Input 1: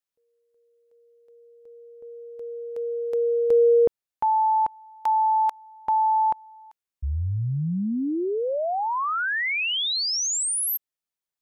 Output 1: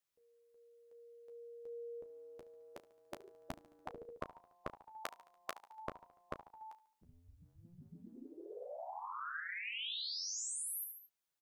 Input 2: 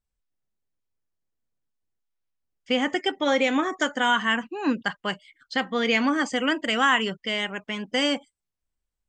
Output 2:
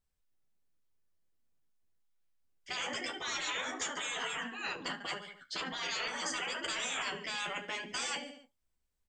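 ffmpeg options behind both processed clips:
-filter_complex "[0:a]asplit=2[a][b];[b]aecho=0:1:72|144|216|288:0.112|0.0595|0.0315|0.0167[c];[a][c]amix=inputs=2:normalize=0,afftfilt=real='re*lt(hypot(re,im),0.0794)':imag='im*lt(hypot(re,im),0.0794)':win_size=1024:overlap=0.75,asplit=2[d][e];[e]aecho=0:1:12|34:0.473|0.211[f];[d][f]amix=inputs=2:normalize=0"

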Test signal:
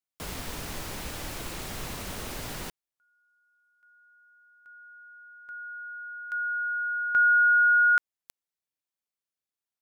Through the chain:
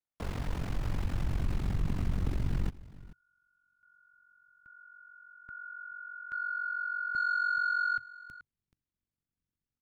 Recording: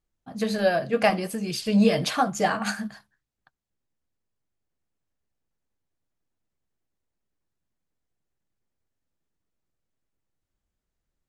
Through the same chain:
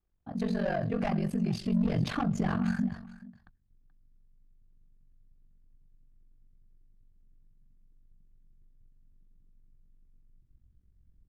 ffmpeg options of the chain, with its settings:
-af "equalizer=f=110:w=7:g=2.5,asoftclip=type=tanh:threshold=-21dB,asubboost=boost=10.5:cutoff=200,lowpass=f=1.3k:p=1,acompressor=threshold=-29dB:ratio=3:attack=3.7:release=40:detection=peak,aecho=1:1:429:0.112,aeval=exprs='val(0)*sin(2*PI*23*n/s)':c=same,volume=3.5dB"

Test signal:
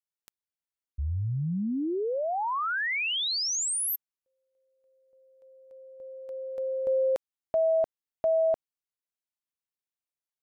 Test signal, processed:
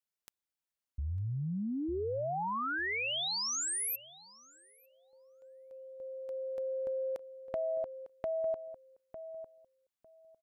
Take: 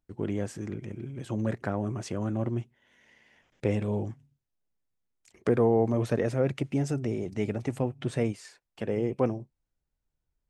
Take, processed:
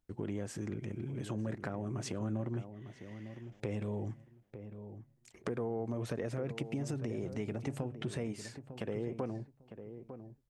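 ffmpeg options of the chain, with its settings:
-filter_complex "[0:a]acompressor=threshold=-34dB:ratio=5:attack=8:release=110:knee=6:detection=rms,asplit=2[a][b];[b]adelay=902,lowpass=f=1.1k:p=1,volume=-10dB,asplit=2[c][d];[d]adelay=902,lowpass=f=1.1k:p=1,volume=0.19,asplit=2[e][f];[f]adelay=902,lowpass=f=1.1k:p=1,volume=0.19[g];[c][e][g]amix=inputs=3:normalize=0[h];[a][h]amix=inputs=2:normalize=0"

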